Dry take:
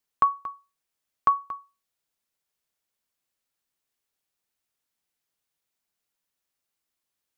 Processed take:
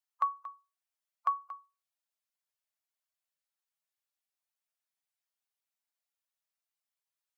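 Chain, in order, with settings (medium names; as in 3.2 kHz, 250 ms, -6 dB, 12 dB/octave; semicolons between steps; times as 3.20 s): coarse spectral quantiser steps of 15 dB; brick-wall FIR high-pass 540 Hz; trim -8.5 dB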